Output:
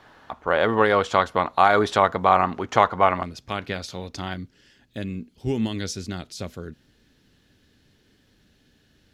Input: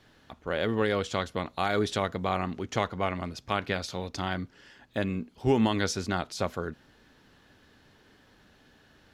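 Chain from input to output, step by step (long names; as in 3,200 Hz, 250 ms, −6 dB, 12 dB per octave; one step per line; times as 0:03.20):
parametric band 980 Hz +13.5 dB 1.9 octaves, from 0:03.23 −2.5 dB, from 0:04.34 −12.5 dB
level +1.5 dB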